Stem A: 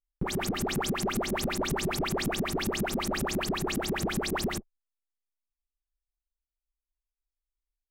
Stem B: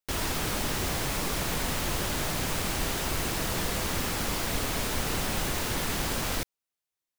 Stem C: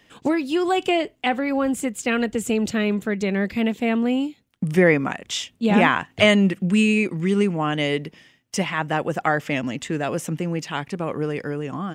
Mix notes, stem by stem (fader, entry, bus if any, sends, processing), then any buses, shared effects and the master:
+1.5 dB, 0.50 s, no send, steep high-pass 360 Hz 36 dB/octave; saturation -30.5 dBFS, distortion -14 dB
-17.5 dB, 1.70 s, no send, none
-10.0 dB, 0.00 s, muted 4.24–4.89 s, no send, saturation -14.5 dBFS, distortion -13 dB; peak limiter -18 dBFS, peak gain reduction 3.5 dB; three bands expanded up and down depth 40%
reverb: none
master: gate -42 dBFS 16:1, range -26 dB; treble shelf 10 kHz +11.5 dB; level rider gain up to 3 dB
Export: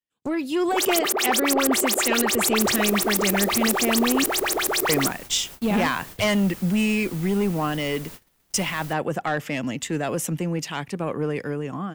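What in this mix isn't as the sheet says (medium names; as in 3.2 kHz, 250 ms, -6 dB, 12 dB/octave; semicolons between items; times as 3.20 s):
stem A +1.5 dB -> +8.0 dB; stem B: entry 1.70 s -> 2.50 s; stem C -10.0 dB -> -2.0 dB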